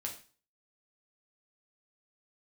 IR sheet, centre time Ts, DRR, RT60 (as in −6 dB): 17 ms, 0.0 dB, 0.40 s